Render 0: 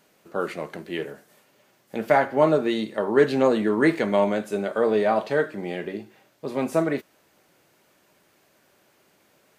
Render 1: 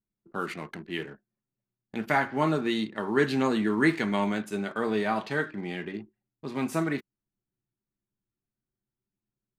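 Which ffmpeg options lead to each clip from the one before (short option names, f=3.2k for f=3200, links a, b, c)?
-af "anlmdn=0.158,equalizer=f=550:w=1.7:g=-14"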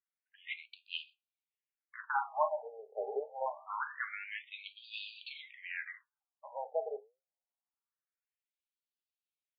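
-af "alimiter=limit=-15.5dB:level=0:latency=1:release=356,flanger=delay=7.4:depth=2.7:regen=80:speed=1.8:shape=sinusoidal,afftfilt=real='re*between(b*sr/1024,580*pow(3500/580,0.5+0.5*sin(2*PI*0.25*pts/sr))/1.41,580*pow(3500/580,0.5+0.5*sin(2*PI*0.25*pts/sr))*1.41)':imag='im*between(b*sr/1024,580*pow(3500/580,0.5+0.5*sin(2*PI*0.25*pts/sr))/1.41,580*pow(3500/580,0.5+0.5*sin(2*PI*0.25*pts/sr))*1.41)':win_size=1024:overlap=0.75,volume=5dB"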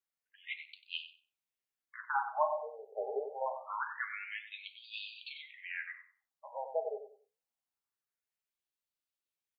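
-filter_complex "[0:a]asplit=2[a][b];[b]adelay=94,lowpass=f=2.3k:p=1,volume=-8.5dB,asplit=2[c][d];[d]adelay=94,lowpass=f=2.3k:p=1,volume=0.28,asplit=2[e][f];[f]adelay=94,lowpass=f=2.3k:p=1,volume=0.28[g];[a][c][e][g]amix=inputs=4:normalize=0"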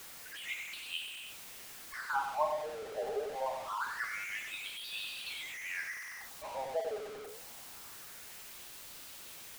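-af "aeval=exprs='val(0)+0.5*0.0126*sgn(val(0))':c=same,volume=-2dB"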